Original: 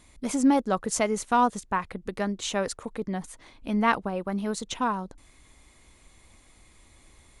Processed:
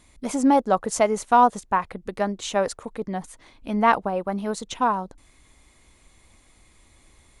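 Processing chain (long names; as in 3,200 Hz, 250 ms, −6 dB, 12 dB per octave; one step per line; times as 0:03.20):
dynamic equaliser 730 Hz, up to +8 dB, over −39 dBFS, Q 0.94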